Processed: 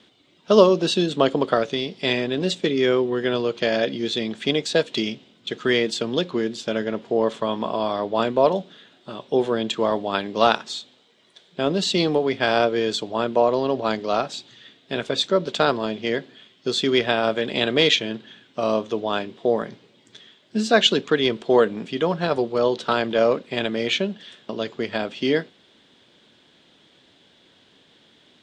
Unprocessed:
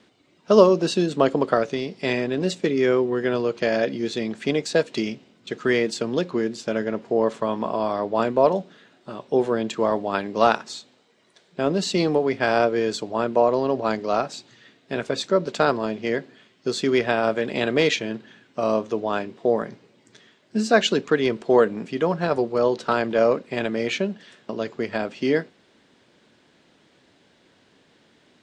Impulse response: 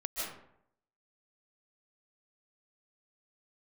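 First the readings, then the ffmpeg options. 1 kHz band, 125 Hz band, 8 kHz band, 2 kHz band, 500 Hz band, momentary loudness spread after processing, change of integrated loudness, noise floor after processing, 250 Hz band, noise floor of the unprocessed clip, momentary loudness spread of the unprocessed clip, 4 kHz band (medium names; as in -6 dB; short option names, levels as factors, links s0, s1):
0.0 dB, 0.0 dB, +0.5 dB, +1.0 dB, 0.0 dB, 10 LU, +0.5 dB, -58 dBFS, 0.0 dB, -60 dBFS, 9 LU, +7.5 dB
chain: -af "equalizer=f=3400:t=o:w=0.48:g=10.5"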